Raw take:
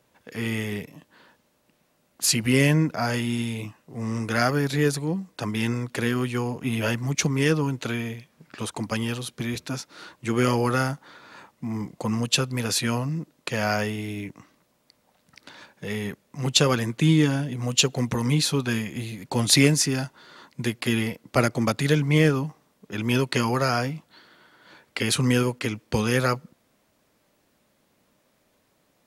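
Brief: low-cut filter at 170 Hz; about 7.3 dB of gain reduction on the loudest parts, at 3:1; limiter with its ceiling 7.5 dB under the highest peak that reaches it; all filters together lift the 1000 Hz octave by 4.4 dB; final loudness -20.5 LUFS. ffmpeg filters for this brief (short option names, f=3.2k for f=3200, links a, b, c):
-af "highpass=170,equalizer=f=1k:t=o:g=6,acompressor=threshold=-23dB:ratio=3,volume=9dB,alimiter=limit=-7.5dB:level=0:latency=1"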